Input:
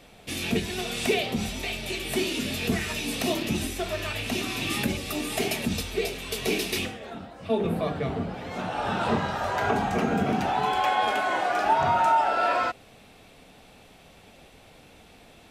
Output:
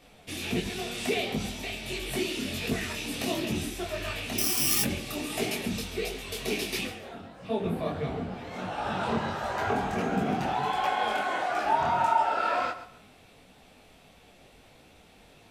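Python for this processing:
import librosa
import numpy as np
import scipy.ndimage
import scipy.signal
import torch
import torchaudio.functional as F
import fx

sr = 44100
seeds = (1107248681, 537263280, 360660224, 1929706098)

y = fx.echo_feedback(x, sr, ms=136, feedback_pct=26, wet_db=-13.5)
y = fx.resample_bad(y, sr, factor=8, down='filtered', up='zero_stuff', at=(4.38, 4.83))
y = fx.detune_double(y, sr, cents=51)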